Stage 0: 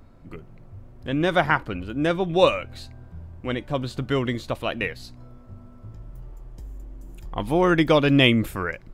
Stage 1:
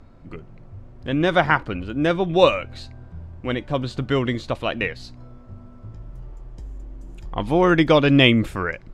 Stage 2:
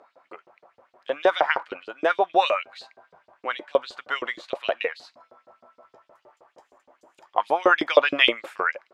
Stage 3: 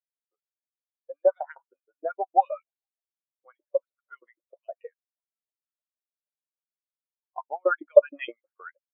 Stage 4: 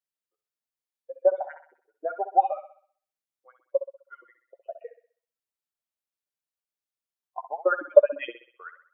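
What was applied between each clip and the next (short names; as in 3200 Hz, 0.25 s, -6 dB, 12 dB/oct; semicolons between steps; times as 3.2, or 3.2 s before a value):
LPF 7000 Hz 12 dB/oct; gain +2.5 dB
bell 810 Hz +10 dB 2.6 oct; LFO high-pass saw up 6.4 Hz 400–4900 Hz; gain -8.5 dB
air absorption 300 m; spectral expander 2.5:1; gain +1.5 dB
thinning echo 64 ms, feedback 47%, high-pass 360 Hz, level -10 dB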